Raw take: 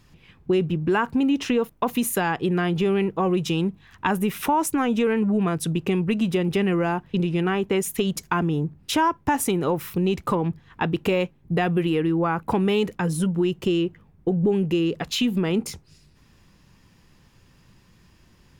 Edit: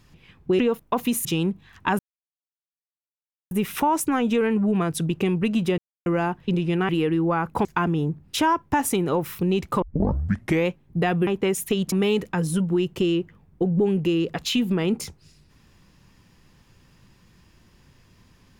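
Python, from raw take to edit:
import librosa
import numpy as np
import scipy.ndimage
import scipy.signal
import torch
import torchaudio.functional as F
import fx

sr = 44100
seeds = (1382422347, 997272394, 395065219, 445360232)

y = fx.edit(x, sr, fx.cut(start_s=0.59, length_s=0.9),
    fx.cut(start_s=2.15, length_s=1.28),
    fx.insert_silence(at_s=4.17, length_s=1.52),
    fx.silence(start_s=6.44, length_s=0.28),
    fx.swap(start_s=7.55, length_s=0.65, other_s=11.82, other_length_s=0.76),
    fx.tape_start(start_s=10.37, length_s=0.86), tone=tone)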